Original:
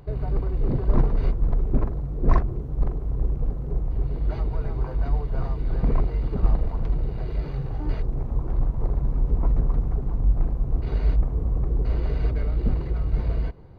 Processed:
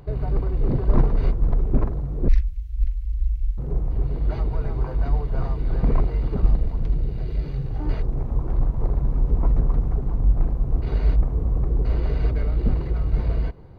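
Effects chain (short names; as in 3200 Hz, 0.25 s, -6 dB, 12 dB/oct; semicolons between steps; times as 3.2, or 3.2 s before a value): 2.28–3.58 inverse Chebyshev band-stop 210–710 Hz, stop band 70 dB; 6.42–7.76 bell 970 Hz -7.5 dB 2.1 oct; gain +2 dB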